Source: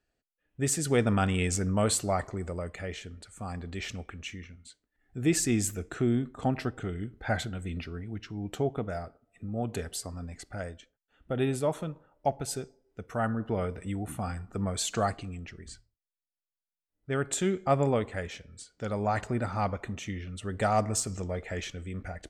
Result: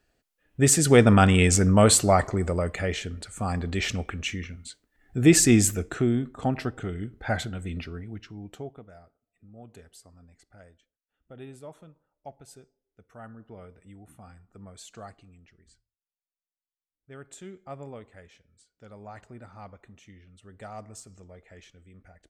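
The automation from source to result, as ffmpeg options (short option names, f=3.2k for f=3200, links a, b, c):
-af "volume=9dB,afade=t=out:st=5.54:d=0.59:silence=0.446684,afade=t=out:st=7.85:d=0.65:silence=0.375837,afade=t=out:st=8.5:d=0.34:silence=0.375837"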